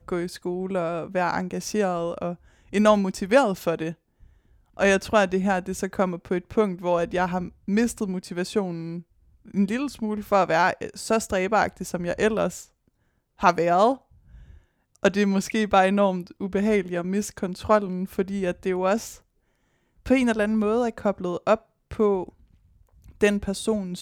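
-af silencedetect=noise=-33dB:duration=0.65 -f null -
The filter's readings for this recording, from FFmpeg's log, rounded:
silence_start: 3.92
silence_end: 4.79 | silence_duration: 0.87
silence_start: 12.62
silence_end: 13.41 | silence_duration: 0.80
silence_start: 13.95
silence_end: 15.03 | silence_duration: 1.08
silence_start: 19.13
silence_end: 20.06 | silence_duration: 0.93
silence_start: 22.29
silence_end: 23.21 | silence_duration: 0.92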